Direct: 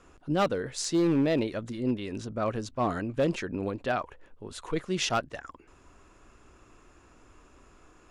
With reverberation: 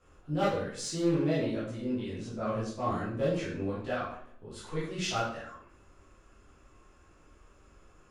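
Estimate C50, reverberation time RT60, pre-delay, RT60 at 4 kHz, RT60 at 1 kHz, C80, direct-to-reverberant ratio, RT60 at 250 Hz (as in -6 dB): 2.0 dB, 0.60 s, 10 ms, 0.50 s, 0.60 s, 7.0 dB, -9.5 dB, 0.75 s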